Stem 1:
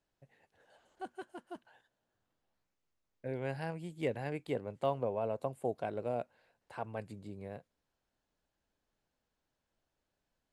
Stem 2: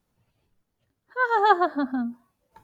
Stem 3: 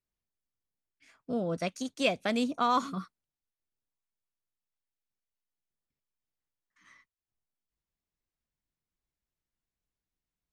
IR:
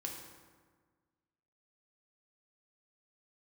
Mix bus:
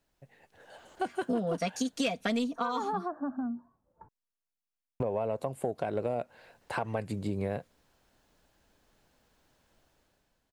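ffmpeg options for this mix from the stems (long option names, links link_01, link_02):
-filter_complex "[0:a]volume=-1dB,asplit=3[link_01][link_02][link_03];[link_01]atrim=end=2.59,asetpts=PTS-STARTPTS,afade=type=out:start_time=2.586:duration=0.004:curve=hsin[link_04];[link_02]atrim=start=2.59:end=5,asetpts=PTS-STARTPTS,volume=0[link_05];[link_03]atrim=start=5,asetpts=PTS-STARTPTS,afade=type=in:duration=0.004:curve=hsin[link_06];[link_04][link_05][link_06]concat=n=3:v=0:a=1[link_07];[1:a]lowpass=frequency=1300:width=0.5412,lowpass=frequency=1300:width=1.3066,acompressor=threshold=-30dB:ratio=4,adelay=1450,volume=-18dB[link_08];[2:a]aecho=1:1:4.3:0.89,volume=-1.5dB,afade=type=out:start_time=2.4:duration=0.27:silence=0.266073[link_09];[link_07][link_08]amix=inputs=2:normalize=0,dynaudnorm=framelen=150:gausssize=9:maxgain=10dB,alimiter=limit=-22.5dB:level=0:latency=1:release=358,volume=0dB[link_10];[link_09][link_10]amix=inputs=2:normalize=0,acontrast=80,asoftclip=type=tanh:threshold=-10dB,acompressor=threshold=-27dB:ratio=10"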